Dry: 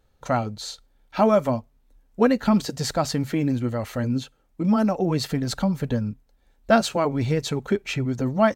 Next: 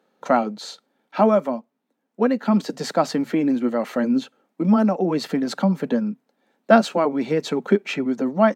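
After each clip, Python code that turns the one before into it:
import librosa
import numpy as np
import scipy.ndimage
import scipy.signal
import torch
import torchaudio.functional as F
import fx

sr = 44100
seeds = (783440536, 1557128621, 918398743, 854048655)

y = fx.rider(x, sr, range_db=10, speed_s=0.5)
y = scipy.signal.sosfilt(scipy.signal.butter(8, 180.0, 'highpass', fs=sr, output='sos'), y)
y = fx.high_shelf(y, sr, hz=3700.0, db=-11.5)
y = y * librosa.db_to_amplitude(3.5)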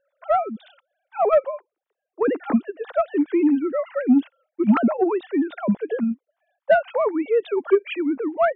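y = fx.sine_speech(x, sr)
y = 10.0 ** (-6.5 / 20.0) * np.tanh(y / 10.0 ** (-6.5 / 20.0))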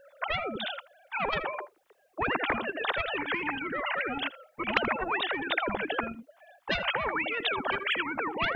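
y = x + 10.0 ** (-21.0 / 20.0) * np.pad(x, (int(80 * sr / 1000.0), 0))[:len(x)]
y = fx.spectral_comp(y, sr, ratio=10.0)
y = y * librosa.db_to_amplitude(-3.0)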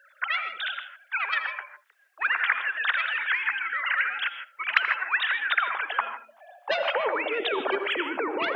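y = fx.filter_sweep_highpass(x, sr, from_hz=1600.0, to_hz=380.0, start_s=5.37, end_s=7.44, q=2.8)
y = fx.rev_gated(y, sr, seeds[0], gate_ms=180, shape='rising', drr_db=9.5)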